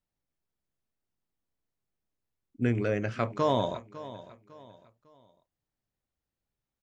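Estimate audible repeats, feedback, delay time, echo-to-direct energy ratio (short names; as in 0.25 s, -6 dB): 3, 35%, 0.552 s, -15.5 dB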